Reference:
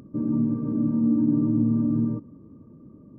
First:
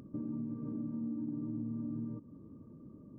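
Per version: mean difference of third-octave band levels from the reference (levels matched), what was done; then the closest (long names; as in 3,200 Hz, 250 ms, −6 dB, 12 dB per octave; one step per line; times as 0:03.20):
2.5 dB: downward compressor 4 to 1, threshold −33 dBFS, peak gain reduction 13.5 dB
level −5 dB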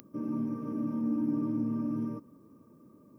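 4.0 dB: spectral tilt +4.5 dB per octave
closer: first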